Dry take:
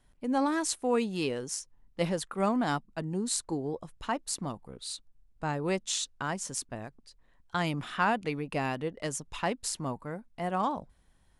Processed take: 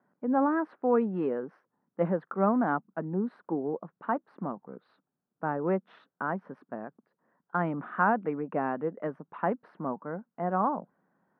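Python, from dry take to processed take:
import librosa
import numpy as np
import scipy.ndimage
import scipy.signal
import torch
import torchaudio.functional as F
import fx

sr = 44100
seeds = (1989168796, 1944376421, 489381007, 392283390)

y = scipy.signal.sosfilt(scipy.signal.ellip(3, 1.0, 60, [180.0, 1500.0], 'bandpass', fs=sr, output='sos'), x)
y = y * librosa.db_to_amplitude(3.0)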